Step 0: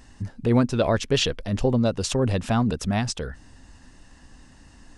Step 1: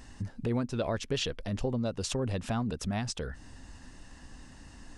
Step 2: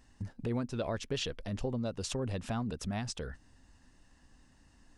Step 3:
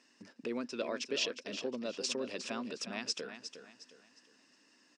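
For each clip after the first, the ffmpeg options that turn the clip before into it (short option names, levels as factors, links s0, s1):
-af "acompressor=threshold=0.0158:ratio=2"
-af "agate=range=0.355:threshold=0.00891:ratio=16:detection=peak,volume=0.668"
-af "highpass=f=260:w=0.5412,highpass=f=260:w=1.3066,equalizer=f=790:t=q:w=4:g=-9,equalizer=f=2500:t=q:w=4:g=7,equalizer=f=5200:t=q:w=4:g=8,lowpass=f=8200:w=0.5412,lowpass=f=8200:w=1.3066,aecho=1:1:359|718|1077|1436:0.316|0.108|0.0366|0.0124"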